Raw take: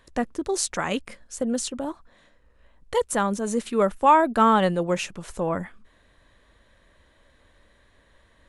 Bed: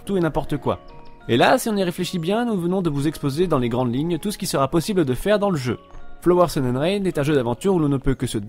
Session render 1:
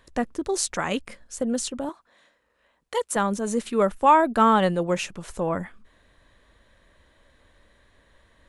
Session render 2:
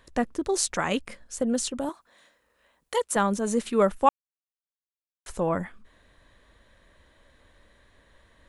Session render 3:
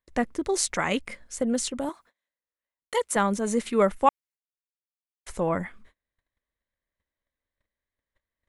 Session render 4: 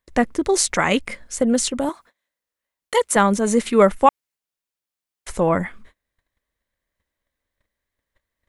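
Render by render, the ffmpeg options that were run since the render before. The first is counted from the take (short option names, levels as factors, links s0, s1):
-filter_complex "[0:a]asettb=1/sr,asplit=3[s0][s1][s2];[s0]atrim=end=1.894[s3];[s1]atrim=start=1.89:end=3.16,asetpts=PTS-STARTPTS,afade=t=in:d=0.004:c=qsin,afade=t=out:st=1.266:d=0.004:c=qsin,highpass=f=540:p=1[s4];[s2]atrim=start=3.156[s5];[s3][s4]acrossfade=d=0.004:c1=hsin:c2=qsin[s6];[s6][s5]acrossfade=d=0.004:c1=qsin:c2=hsin"
-filter_complex "[0:a]asettb=1/sr,asplit=3[s0][s1][s2];[s0]atrim=end=1.784[s3];[s1]atrim=start=1.78:end=2.96,asetpts=PTS-STARTPTS,afade=t=in:d=0.004:c=qsin,afade=t=out:st=1.176:d=0.004:c=qsin,highshelf=f=7300:g=10[s4];[s2]atrim=start=2.956[s5];[s3][s4]acrossfade=d=0.004:c1=hsin:c2=qsin[s6];[s6][s5]acrossfade=d=0.004:c1=qsin:c2=hsin,asplit=3[s7][s8][s9];[s7]atrim=end=4.09,asetpts=PTS-STARTPTS,afade=t=out:st=4.086:d=0.004:c=hsin[s10];[s8]atrim=start=4.09:end=5.26,asetpts=PTS-STARTPTS,volume=0[s11];[s9]atrim=start=5.26,asetpts=PTS-STARTPTS,afade=t=in:d=0.004:c=hsin[s12];[s10][s11][s12]concat=n=3:v=0:a=1"
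-af "agate=range=0.0251:threshold=0.00251:ratio=16:detection=peak,equalizer=f=2100:t=o:w=0.22:g=7.5"
-af "volume=2.37,alimiter=limit=0.794:level=0:latency=1"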